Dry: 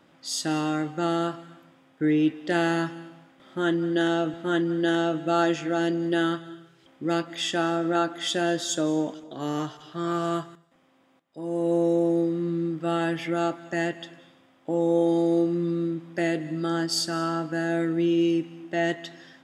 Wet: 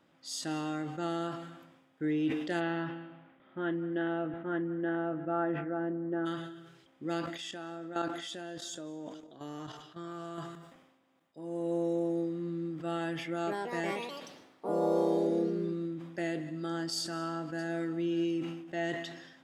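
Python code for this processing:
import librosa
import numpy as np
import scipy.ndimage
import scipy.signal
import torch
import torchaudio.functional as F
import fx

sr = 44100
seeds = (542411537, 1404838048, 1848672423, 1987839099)

y = fx.lowpass(x, sr, hz=fx.line((2.59, 3600.0), (6.25, 1400.0)), slope=24, at=(2.59, 6.25), fade=0.02)
y = fx.level_steps(y, sr, step_db=11, at=(7.26, 10.38))
y = fx.echo_pitch(y, sr, ms=180, semitones=3, count=3, db_per_echo=-3.0, at=(13.29, 16.13))
y = fx.echo_throw(y, sr, start_s=17.0, length_s=0.66, ms=580, feedback_pct=20, wet_db=-17.5)
y = fx.sustainer(y, sr, db_per_s=54.0)
y = y * 10.0 ** (-9.0 / 20.0)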